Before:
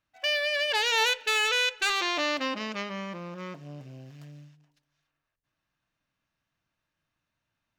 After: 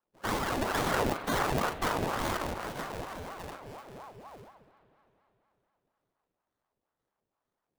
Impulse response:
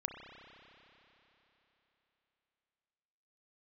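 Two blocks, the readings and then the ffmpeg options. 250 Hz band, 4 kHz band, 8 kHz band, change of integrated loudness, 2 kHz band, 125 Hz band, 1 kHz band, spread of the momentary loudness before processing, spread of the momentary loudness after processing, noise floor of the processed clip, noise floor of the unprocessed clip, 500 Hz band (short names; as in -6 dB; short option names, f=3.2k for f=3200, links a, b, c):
+2.5 dB, -13.5 dB, -5.0 dB, -6.0 dB, -9.0 dB, +6.0 dB, +0.5 dB, 17 LU, 18 LU, under -85 dBFS, -84 dBFS, -1.0 dB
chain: -filter_complex "[0:a]acrusher=samples=34:mix=1:aa=0.000001:lfo=1:lforange=34:lforate=2.1,asplit=2[a][b];[1:a]atrim=start_sample=2205,adelay=40[c];[b][c]afir=irnorm=-1:irlink=0,volume=-5.5dB[d];[a][d]amix=inputs=2:normalize=0,aeval=exprs='val(0)*sin(2*PI*620*n/s+620*0.6/4.2*sin(2*PI*4.2*n/s))':c=same,volume=-2dB"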